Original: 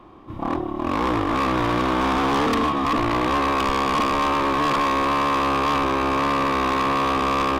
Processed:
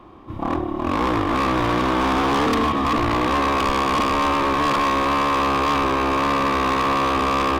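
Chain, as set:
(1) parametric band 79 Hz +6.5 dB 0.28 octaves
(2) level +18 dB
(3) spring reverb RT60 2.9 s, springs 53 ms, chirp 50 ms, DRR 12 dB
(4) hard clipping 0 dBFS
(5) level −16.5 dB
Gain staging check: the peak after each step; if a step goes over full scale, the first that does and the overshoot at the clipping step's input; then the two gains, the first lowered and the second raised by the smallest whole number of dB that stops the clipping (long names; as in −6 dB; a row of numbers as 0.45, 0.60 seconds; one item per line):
−16.0, +2.0, +5.5, 0.0, −16.5 dBFS
step 2, 5.5 dB
step 2 +12 dB, step 5 −10.5 dB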